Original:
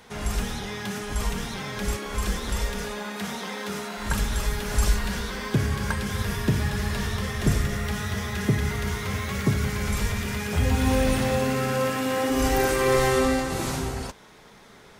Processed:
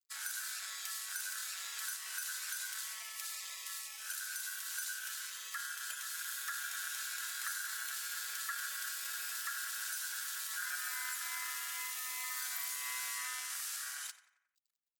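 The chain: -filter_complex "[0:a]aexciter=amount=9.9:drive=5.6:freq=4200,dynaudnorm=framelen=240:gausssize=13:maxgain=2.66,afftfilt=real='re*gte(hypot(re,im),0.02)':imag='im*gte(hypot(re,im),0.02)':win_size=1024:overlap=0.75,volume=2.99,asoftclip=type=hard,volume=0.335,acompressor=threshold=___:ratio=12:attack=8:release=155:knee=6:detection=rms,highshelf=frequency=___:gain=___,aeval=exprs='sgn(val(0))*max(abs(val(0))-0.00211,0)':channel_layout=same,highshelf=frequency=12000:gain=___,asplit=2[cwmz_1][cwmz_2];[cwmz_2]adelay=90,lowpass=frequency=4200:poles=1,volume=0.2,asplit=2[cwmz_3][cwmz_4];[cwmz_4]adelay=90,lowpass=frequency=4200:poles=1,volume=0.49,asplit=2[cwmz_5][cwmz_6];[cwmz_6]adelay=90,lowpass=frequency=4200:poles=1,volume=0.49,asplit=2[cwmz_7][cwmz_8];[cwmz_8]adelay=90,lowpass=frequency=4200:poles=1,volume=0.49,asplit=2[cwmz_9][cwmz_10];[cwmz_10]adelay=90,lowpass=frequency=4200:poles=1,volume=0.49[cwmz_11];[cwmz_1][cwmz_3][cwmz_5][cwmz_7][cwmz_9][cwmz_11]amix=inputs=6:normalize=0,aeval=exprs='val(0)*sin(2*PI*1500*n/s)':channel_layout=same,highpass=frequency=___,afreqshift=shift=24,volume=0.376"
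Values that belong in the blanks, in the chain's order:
0.1, 4600, -9.5, 8, 1300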